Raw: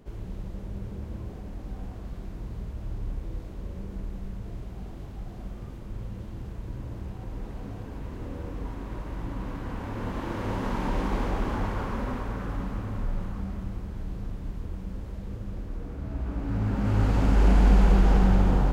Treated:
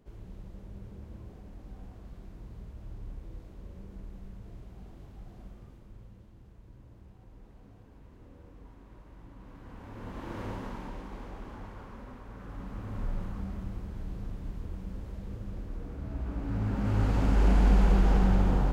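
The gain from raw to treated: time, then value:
5.41 s -9 dB
6.33 s -16.5 dB
9.36 s -16.5 dB
10.41 s -6 dB
11.05 s -15 dB
12.2 s -15 dB
13.04 s -3.5 dB

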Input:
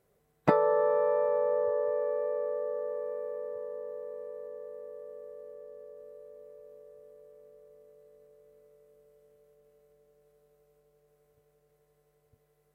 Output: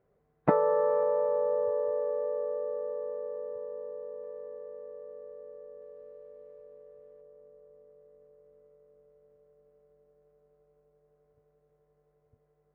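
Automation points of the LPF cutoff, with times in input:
1600 Hz
from 1.03 s 1200 Hz
from 4.24 s 1700 Hz
from 5.82 s 2700 Hz
from 6.64 s 2100 Hz
from 7.21 s 1300 Hz

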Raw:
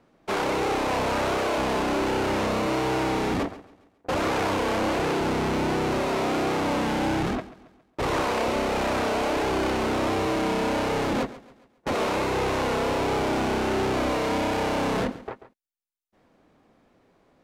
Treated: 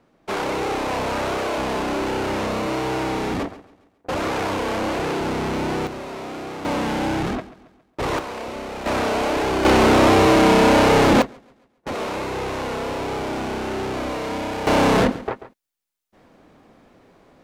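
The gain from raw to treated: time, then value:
+1 dB
from 5.87 s -7 dB
from 6.65 s +2 dB
from 8.19 s -6 dB
from 8.86 s +3.5 dB
from 9.65 s +11 dB
from 11.22 s -1.5 dB
from 14.67 s +9 dB

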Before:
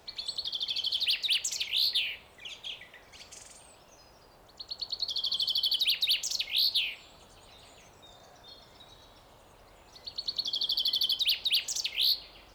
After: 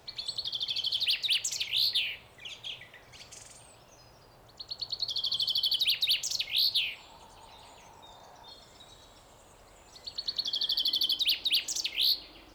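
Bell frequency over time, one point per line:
bell +12 dB 0.27 oct
120 Hz
from 6.97 s 900 Hz
from 8.51 s 7600 Hz
from 10.16 s 1800 Hz
from 10.83 s 310 Hz

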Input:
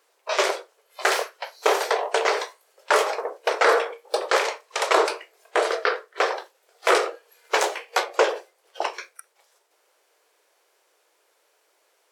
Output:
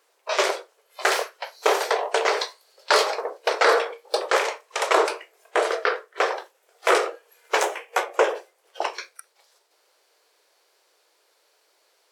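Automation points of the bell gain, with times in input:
bell 4400 Hz 0.57 oct
+0.5 dB
from 2.41 s +12 dB
from 3.06 s +4.5 dB
from 4.22 s -3 dB
from 7.64 s -12 dB
from 8.35 s -1 dB
from 8.95 s +7 dB

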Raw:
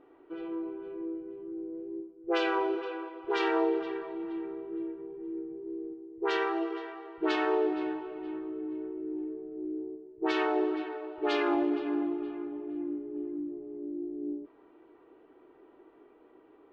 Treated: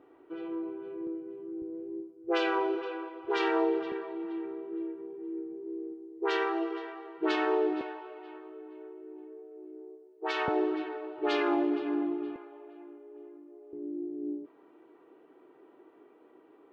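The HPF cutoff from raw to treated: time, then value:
HPF 24 dB/oct
54 Hz
from 1.07 s 120 Hz
from 1.62 s 58 Hz
from 3.92 s 180 Hz
from 7.81 s 450 Hz
from 10.48 s 120 Hz
from 12.36 s 480 Hz
from 13.73 s 130 Hz

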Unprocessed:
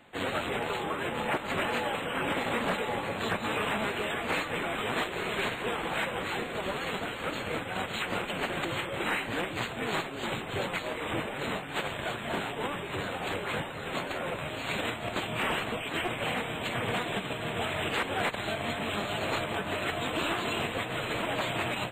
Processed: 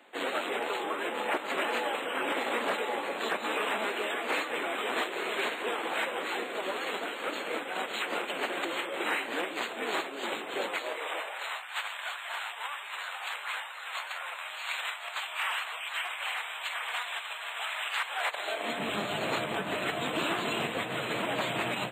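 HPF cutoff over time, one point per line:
HPF 24 dB/oct
10.64 s 280 Hz
11.6 s 890 Hz
18.08 s 890 Hz
18.55 s 400 Hz
18.85 s 130 Hz

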